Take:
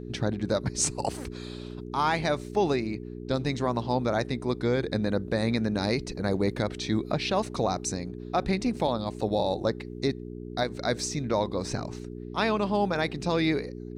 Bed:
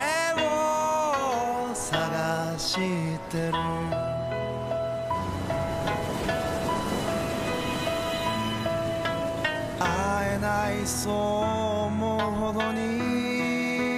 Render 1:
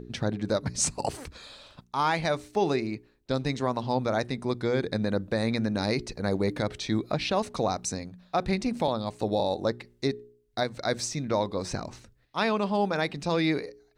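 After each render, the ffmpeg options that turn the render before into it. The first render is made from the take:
-af "bandreject=f=60:t=h:w=4,bandreject=f=120:t=h:w=4,bandreject=f=180:t=h:w=4,bandreject=f=240:t=h:w=4,bandreject=f=300:t=h:w=4,bandreject=f=360:t=h:w=4,bandreject=f=420:t=h:w=4"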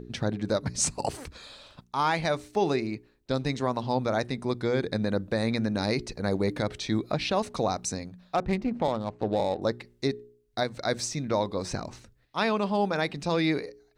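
-filter_complex "[0:a]asettb=1/sr,asplit=3[a][b][c];[a]atrim=end=8.354[d];[b]atrim=start=8.35:end=9.62,asetpts=PTS-STARTPTS,afade=t=in:d=0.004:c=qsin,afade=t=out:st=1.266:d=0.004:c=qsin,adynamicsmooth=sensitivity=2.5:basefreq=1.3k[e];[c]atrim=start=9.616[f];[d][e]acrossfade=d=0.004:c1=hsin:c2=qsin[g];[g][f]acrossfade=d=0.004:c1=qsin:c2=hsin"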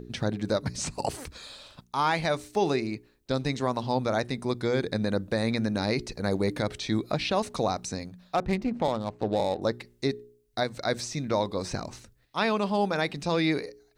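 -filter_complex "[0:a]acrossover=split=4200[a][b];[b]acompressor=threshold=-43dB:ratio=4:attack=1:release=60[c];[a][c]amix=inputs=2:normalize=0,highshelf=f=5.3k:g=7.5"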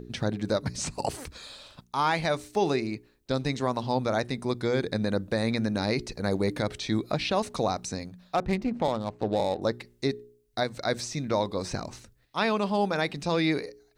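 -af anull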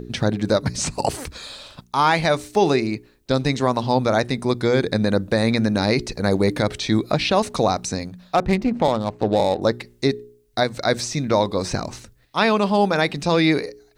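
-af "volume=8dB"

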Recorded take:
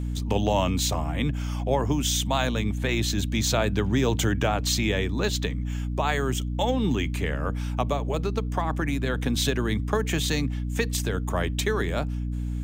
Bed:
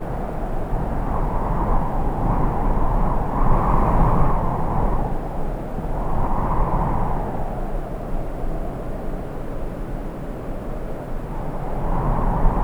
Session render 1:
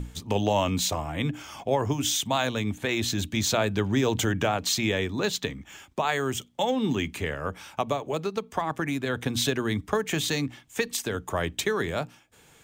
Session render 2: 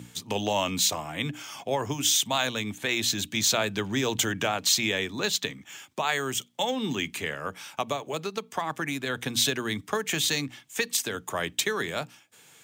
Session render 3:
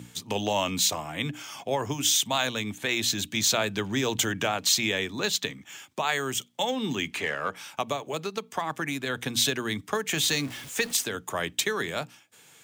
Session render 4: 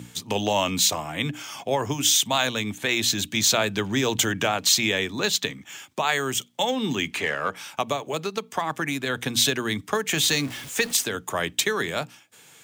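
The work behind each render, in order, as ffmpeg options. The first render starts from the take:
-af "bandreject=f=60:t=h:w=6,bandreject=f=120:t=h:w=6,bandreject=f=180:t=h:w=6,bandreject=f=240:t=h:w=6,bandreject=f=300:t=h:w=6"
-af "highpass=f=110:w=0.5412,highpass=f=110:w=1.3066,tiltshelf=f=1.4k:g=-4.5"
-filter_complex "[0:a]asettb=1/sr,asplit=3[a][b][c];[a]atrim=end=7.114[d];[b]atrim=start=7.11:end=7.56,asetpts=PTS-STARTPTS,afade=t=in:d=0.004:c=qsin,afade=t=out:st=0.446:d=0.004:c=qsin,asplit=2[e][f];[f]highpass=f=720:p=1,volume=13dB,asoftclip=type=tanh:threshold=-16dB[g];[e][g]amix=inputs=2:normalize=0,lowpass=f=2.4k:p=1,volume=-6dB[h];[c]atrim=start=7.556[i];[d][h]acrossfade=d=0.004:c1=hsin:c2=qsin[j];[j][i]acrossfade=d=0.004:c1=qsin:c2=hsin,asettb=1/sr,asplit=3[k][l][m];[k]atrim=end=10.174[n];[l]atrim=start=10.17:end=11.04,asetpts=PTS-STARTPTS,afade=t=in:d=0.004:c=qsin,afade=t=out:st=0.866:d=0.004:c=qsin,aeval=exprs='val(0)+0.5*0.0141*sgn(val(0))':c=same[o];[m]atrim=start=11.036[p];[n][o]acrossfade=d=0.004:c1=hsin:c2=qsin[q];[q][p]acrossfade=d=0.004:c1=qsin:c2=hsin"
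-af "volume=3.5dB"

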